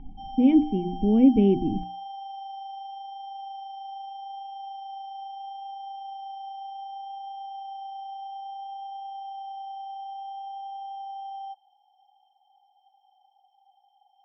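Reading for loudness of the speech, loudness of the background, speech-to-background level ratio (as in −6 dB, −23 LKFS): −21.5 LKFS, −38.5 LKFS, 17.0 dB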